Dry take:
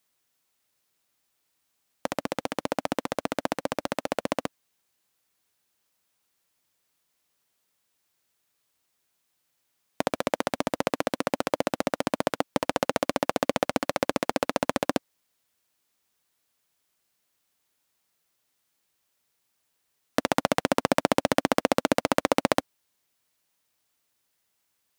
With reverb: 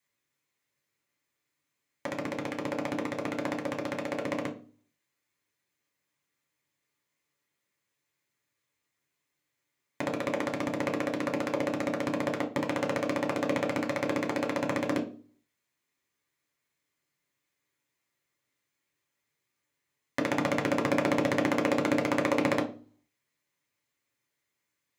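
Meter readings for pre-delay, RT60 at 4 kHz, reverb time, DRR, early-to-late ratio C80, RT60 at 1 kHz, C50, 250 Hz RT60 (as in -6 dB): 3 ms, 0.35 s, 0.40 s, 0.5 dB, 18.0 dB, 0.35 s, 12.5 dB, 0.55 s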